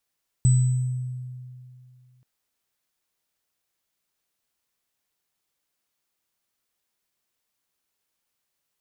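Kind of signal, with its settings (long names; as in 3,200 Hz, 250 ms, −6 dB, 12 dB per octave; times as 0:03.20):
inharmonic partials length 1.78 s, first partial 126 Hz, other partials 8,000 Hz, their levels −13 dB, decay 2.43 s, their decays 0.95 s, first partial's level −13 dB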